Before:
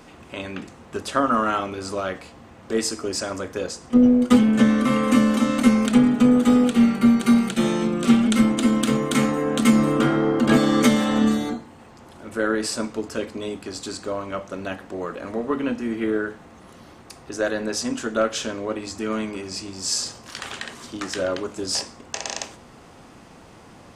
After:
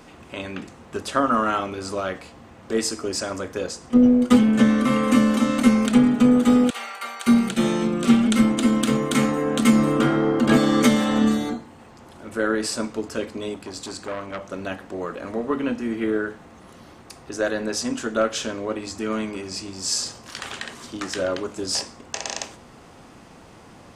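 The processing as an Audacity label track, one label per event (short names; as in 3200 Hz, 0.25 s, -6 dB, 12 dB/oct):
6.700000	7.270000	HPF 690 Hz 24 dB/oct
13.540000	14.420000	core saturation saturates under 1600 Hz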